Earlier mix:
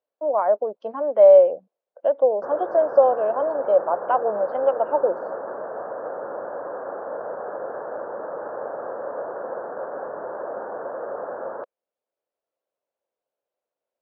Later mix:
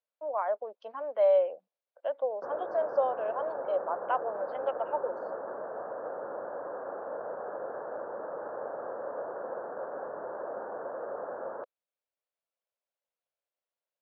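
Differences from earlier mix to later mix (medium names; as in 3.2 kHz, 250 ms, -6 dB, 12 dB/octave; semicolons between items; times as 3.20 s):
speech: add band-pass filter 3.6 kHz, Q 0.63; background -6.5 dB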